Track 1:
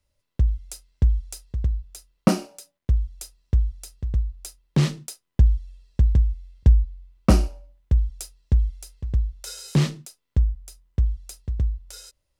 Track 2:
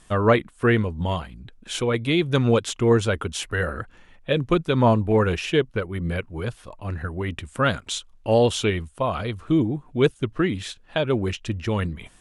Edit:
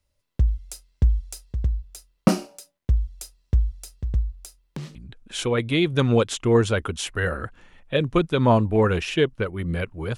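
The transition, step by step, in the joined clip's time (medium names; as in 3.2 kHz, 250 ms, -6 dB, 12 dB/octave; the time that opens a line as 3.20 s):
track 1
4.44–4.95 s: compression 2.5:1, threshold -40 dBFS
4.95 s: go over to track 2 from 1.31 s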